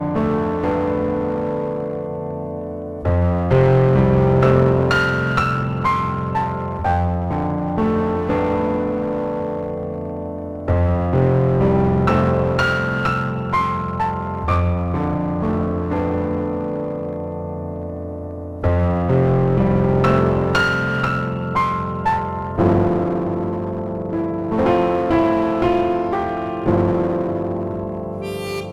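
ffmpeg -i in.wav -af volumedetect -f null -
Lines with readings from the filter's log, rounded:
mean_volume: -18.8 dB
max_volume: -3.4 dB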